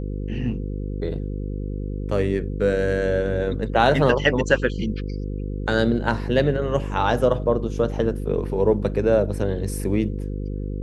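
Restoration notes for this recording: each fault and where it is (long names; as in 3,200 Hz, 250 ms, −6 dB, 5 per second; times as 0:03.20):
mains buzz 50 Hz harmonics 10 −28 dBFS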